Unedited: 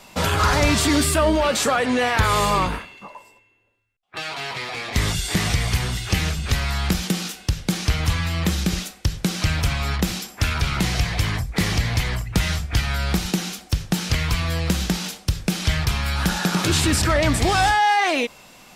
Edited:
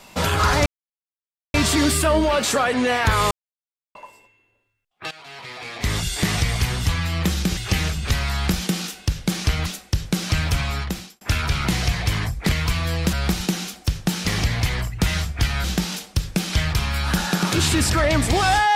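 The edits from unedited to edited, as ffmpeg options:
-filter_complex "[0:a]asplit=13[a][b][c][d][e][f][g][h][i][j][k][l][m];[a]atrim=end=0.66,asetpts=PTS-STARTPTS,afade=t=out:st=0.656:d=0.004:c=hsin,apad=pad_dur=0.88[n];[b]atrim=start=0.66:end=2.43,asetpts=PTS-STARTPTS,afade=t=in:d=0.004:c=hsin,afade=t=out:st=1.766:d=0.004:c=hsin[o];[c]atrim=start=2.43:end=3.07,asetpts=PTS-STARTPTS,volume=0[p];[d]atrim=start=3.07:end=4.23,asetpts=PTS-STARTPTS,afade=t=in:d=0.004:c=hsin,afade=t=out:st=1.156:d=0.004:c=hsin:silence=0.158489[q];[e]atrim=start=4.23:end=5.982,asetpts=PTS-STARTPTS,afade=t=in:d=1.03:silence=0.158489[r];[f]atrim=start=8.068:end=8.782[s];[g]atrim=start=5.978:end=8.072[t];[h]atrim=start=8.778:end=10.33,asetpts=PTS-STARTPTS,afade=t=out:st=1.002:d=0.55[u];[i]atrim=start=10.33:end=11.612,asetpts=PTS-STARTPTS,afade=t=in:d=0.004:c=hsin[v];[j]atrim=start=14.118:end=14.762[w];[k]atrim=start=12.978:end=14.122[x];[l]atrim=start=11.608:end=12.982[y];[m]atrim=start=14.758[z];[n][o][p][q][r]concat=n=5:v=0:a=1[aa];[aa][s]acrossfade=d=0.004:c1=hsin:c2=hsin[ab];[ab][t]acrossfade=d=0.004:c1=hsin:c2=hsin[ac];[u][v]concat=n=2:v=0:a=1[ad];[ac][ad]acrossfade=d=0.004:c1=hsin:c2=hsin[ae];[ae][w]acrossfade=d=0.004:c1=hsin:c2=hsin[af];[af][x]acrossfade=d=0.004:c1=hsin:c2=hsin[ag];[ag][y]acrossfade=d=0.004:c1=hsin:c2=hsin[ah];[ah][z]acrossfade=d=0.004:c1=hsin:c2=hsin"

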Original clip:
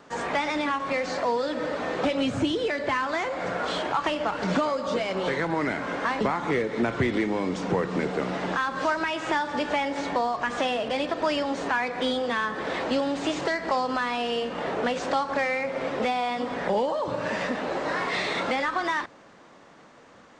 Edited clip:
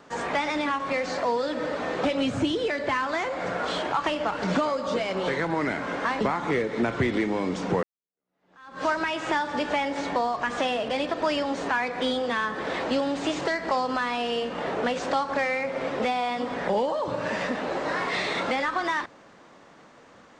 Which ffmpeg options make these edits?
-filter_complex "[0:a]asplit=2[a][b];[a]atrim=end=7.83,asetpts=PTS-STARTPTS,afade=t=out:st=7.826:d=0.004:c=hsin[c];[b]atrim=start=7.83,asetpts=PTS-STARTPTS,afade=t=in:d=1.02:c=exp[d];[c][d]concat=n=2:v=0:a=1"

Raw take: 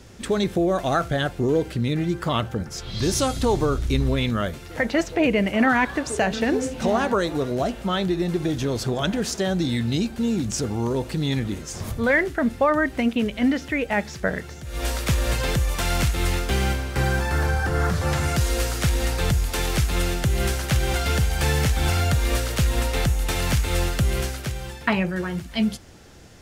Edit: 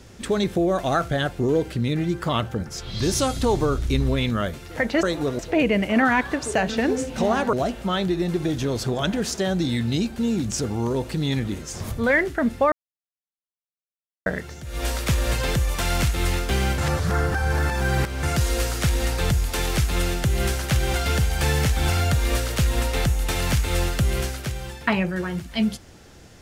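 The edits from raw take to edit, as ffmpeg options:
-filter_complex "[0:a]asplit=8[a][b][c][d][e][f][g][h];[a]atrim=end=5.032[i];[b]atrim=start=7.168:end=7.532[j];[c]atrim=start=5.028:end=7.172[k];[d]atrim=start=7.528:end=12.72,asetpts=PTS-STARTPTS,afade=t=out:st=5.188:d=0.004:c=hsin[l];[e]atrim=start=12.72:end=14.26,asetpts=PTS-STARTPTS,volume=0[m];[f]atrim=start=14.26:end=16.782,asetpts=PTS-STARTPTS,afade=t=in:d=0.004:c=hsin[n];[g]atrim=start=16.778:end=18.232,asetpts=PTS-STARTPTS,areverse[o];[h]atrim=start=18.228[p];[i][j]acrossfade=d=0.004:c1=hsin:c2=hsin[q];[q][k]acrossfade=d=0.004:c1=hsin:c2=hsin[r];[l][m][n]concat=n=3:v=0:a=1[s];[r][s]acrossfade=d=0.004:c1=hsin:c2=hsin[t];[t][o]acrossfade=d=0.004:c1=hsin:c2=hsin[u];[u][p]acrossfade=d=0.004:c1=hsin:c2=hsin"

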